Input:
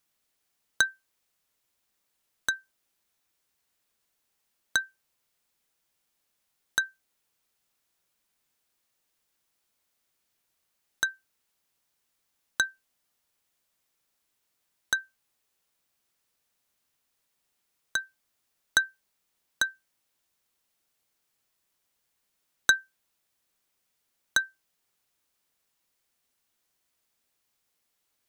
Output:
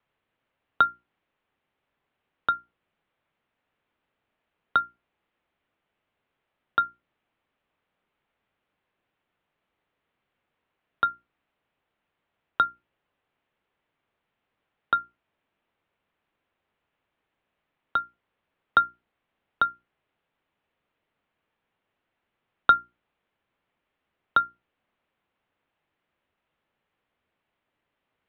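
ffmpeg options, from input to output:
-af "highshelf=f=2.3k:g=-8.5,highpass=f=210:t=q:w=0.5412,highpass=f=210:t=q:w=1.307,lowpass=f=3.4k:t=q:w=0.5176,lowpass=f=3.4k:t=q:w=0.7071,lowpass=f=3.4k:t=q:w=1.932,afreqshift=-170,bandreject=f=60:t=h:w=6,bandreject=f=120:t=h:w=6,bandreject=f=180:t=h:w=6,bandreject=f=240:t=h:w=6,bandreject=f=300:t=h:w=6,bandreject=f=360:t=h:w=6,volume=7.5dB"

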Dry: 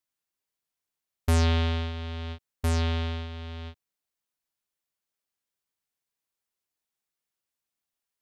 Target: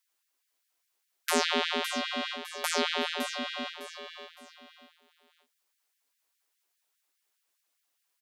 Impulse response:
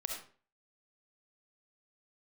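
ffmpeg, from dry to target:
-filter_complex "[0:a]asplit=2[a][b];[b]aecho=0:1:1167:0.106[c];[a][c]amix=inputs=2:normalize=0,acrossover=split=190[d][e];[e]acompressor=threshold=-30dB:ratio=2[f];[d][f]amix=inputs=2:normalize=0,asplit=2[g][h];[h]aecho=0:1:562:0.376[i];[g][i]amix=inputs=2:normalize=0,afftfilt=real='re*gte(b*sr/1024,220*pow(1600/220,0.5+0.5*sin(2*PI*4.9*pts/sr)))':imag='im*gte(b*sr/1024,220*pow(1600/220,0.5+0.5*sin(2*PI*4.9*pts/sr)))':win_size=1024:overlap=0.75,volume=8.5dB"

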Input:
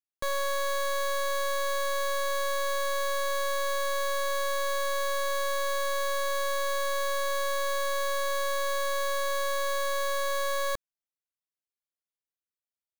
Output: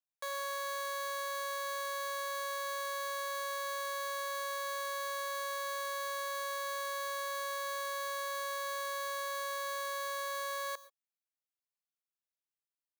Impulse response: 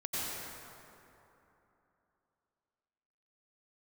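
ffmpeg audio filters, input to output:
-filter_complex "[0:a]highpass=f=550:w=0.5412,highpass=f=550:w=1.3066,asplit=2[a][b];[1:a]atrim=start_sample=2205,afade=t=out:st=0.19:d=0.01,atrim=end_sample=8820,highshelf=f=10k:g=11.5[c];[b][c]afir=irnorm=-1:irlink=0,volume=-16.5dB[d];[a][d]amix=inputs=2:normalize=0,volume=-8dB"

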